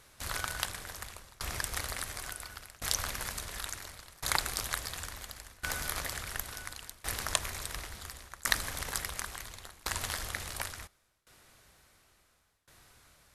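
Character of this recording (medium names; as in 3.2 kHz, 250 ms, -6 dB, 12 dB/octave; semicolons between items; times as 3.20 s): tremolo saw down 0.71 Hz, depth 95%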